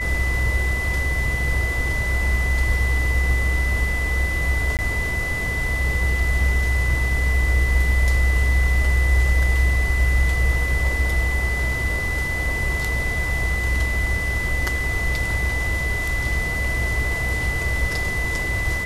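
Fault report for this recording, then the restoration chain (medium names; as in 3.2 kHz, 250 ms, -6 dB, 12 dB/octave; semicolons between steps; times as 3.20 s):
whine 2 kHz -24 dBFS
4.77–4.79 s: dropout 18 ms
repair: band-stop 2 kHz, Q 30; interpolate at 4.77 s, 18 ms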